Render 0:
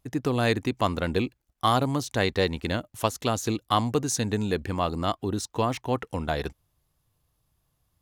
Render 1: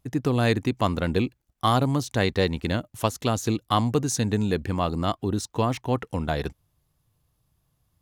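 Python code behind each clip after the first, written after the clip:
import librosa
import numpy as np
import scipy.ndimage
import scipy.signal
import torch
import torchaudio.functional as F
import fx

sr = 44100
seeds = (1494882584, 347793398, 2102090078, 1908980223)

y = fx.peak_eq(x, sr, hz=140.0, db=4.5, octaves=2.0)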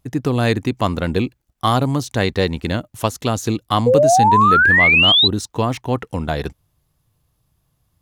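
y = fx.spec_paint(x, sr, seeds[0], shape='rise', start_s=3.86, length_s=1.42, low_hz=470.0, high_hz=4100.0, level_db=-17.0)
y = F.gain(torch.from_numpy(y), 4.5).numpy()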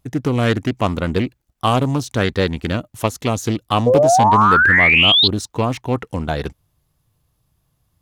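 y = fx.doppler_dist(x, sr, depth_ms=0.23)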